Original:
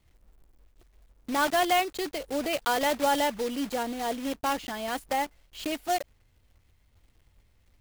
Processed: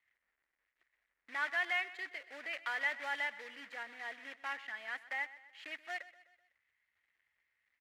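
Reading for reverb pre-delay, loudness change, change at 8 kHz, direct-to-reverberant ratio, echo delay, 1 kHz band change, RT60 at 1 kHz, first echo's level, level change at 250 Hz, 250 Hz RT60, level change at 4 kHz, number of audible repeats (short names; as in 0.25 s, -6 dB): none, -10.0 dB, -24.0 dB, none, 0.126 s, -16.5 dB, none, -17.0 dB, -28.5 dB, none, -13.5 dB, 3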